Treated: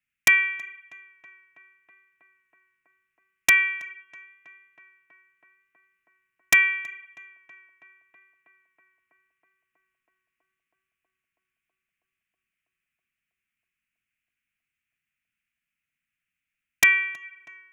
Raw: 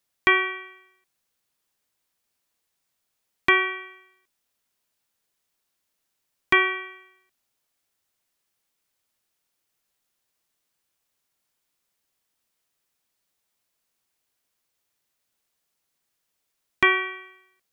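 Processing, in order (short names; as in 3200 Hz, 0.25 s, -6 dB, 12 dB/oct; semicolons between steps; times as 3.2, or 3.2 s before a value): one-sided fold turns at -10 dBFS; EQ curve 170 Hz 0 dB, 270 Hz -3 dB, 420 Hz -28 dB, 830 Hz -28 dB, 1300 Hz -3 dB, 2500 Hz +9 dB, 4200 Hz -20 dB, 6700 Hz -12 dB; wrapped overs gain 3.5 dB; tape echo 0.323 s, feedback 88%, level -21 dB, low-pass 2300 Hz; gain -3 dB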